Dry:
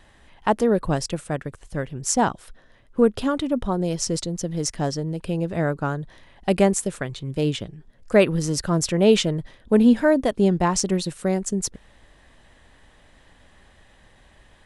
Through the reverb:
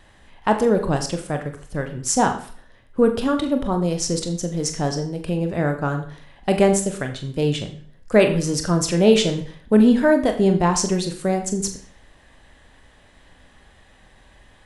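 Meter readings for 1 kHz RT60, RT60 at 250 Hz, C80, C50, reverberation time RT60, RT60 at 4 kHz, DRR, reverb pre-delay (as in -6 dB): 0.50 s, 0.50 s, 13.0 dB, 10.5 dB, 0.45 s, 0.45 s, 5.0 dB, 23 ms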